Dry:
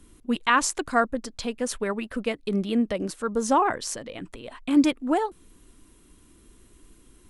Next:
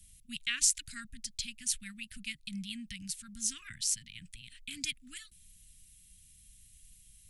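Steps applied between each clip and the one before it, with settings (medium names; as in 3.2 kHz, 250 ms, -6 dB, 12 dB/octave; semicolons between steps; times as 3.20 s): inverse Chebyshev band-stop 420–860 Hz, stop band 70 dB; treble shelf 4.2 kHz +10 dB; trim -6 dB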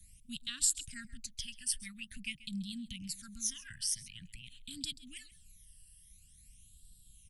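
phase shifter stages 12, 0.47 Hz, lowest notch 380–2200 Hz; delay 134 ms -18.5 dB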